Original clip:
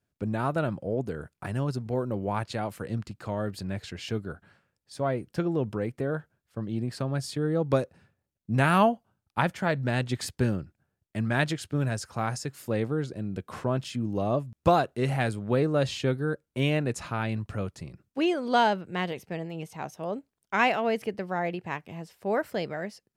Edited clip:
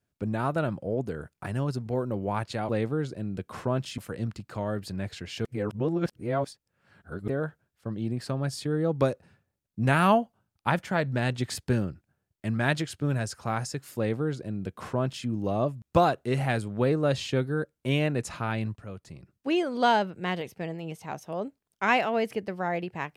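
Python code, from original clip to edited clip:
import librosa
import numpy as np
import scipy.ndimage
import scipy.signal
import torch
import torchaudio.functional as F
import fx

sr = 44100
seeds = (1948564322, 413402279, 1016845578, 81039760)

y = fx.edit(x, sr, fx.reverse_span(start_s=4.16, length_s=1.83),
    fx.duplicate(start_s=12.68, length_s=1.29, to_s=2.69),
    fx.fade_in_from(start_s=17.47, length_s=0.83, floor_db=-12.0), tone=tone)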